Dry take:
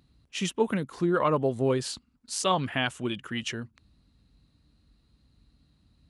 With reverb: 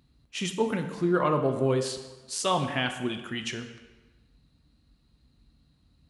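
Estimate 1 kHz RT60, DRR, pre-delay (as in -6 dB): 1.3 s, 6.0 dB, 5 ms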